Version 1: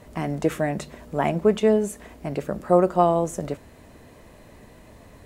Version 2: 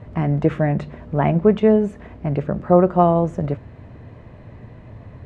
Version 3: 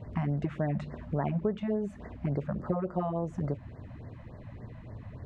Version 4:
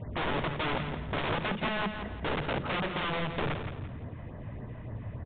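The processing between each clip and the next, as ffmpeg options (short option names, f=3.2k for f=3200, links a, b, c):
-af "lowpass=2.4k,equalizer=f=110:t=o:w=1.1:g=14,volume=2.5dB"
-af "acompressor=threshold=-23dB:ratio=4,afftfilt=real='re*(1-between(b*sr/1024,350*pow(3100/350,0.5+0.5*sin(2*PI*3.5*pts/sr))/1.41,350*pow(3100/350,0.5+0.5*sin(2*PI*3.5*pts/sr))*1.41))':imag='im*(1-between(b*sr/1024,350*pow(3100/350,0.5+0.5*sin(2*PI*3.5*pts/sr))/1.41,350*pow(3100/350,0.5+0.5*sin(2*PI*3.5*pts/sr))*1.41))':win_size=1024:overlap=0.75,volume=-4.5dB"
-af "aeval=exprs='(mod(29.9*val(0)+1,2)-1)/29.9':c=same,aecho=1:1:169|338|507|676:0.398|0.143|0.0516|0.0186,aresample=8000,aresample=44100,volume=3.5dB"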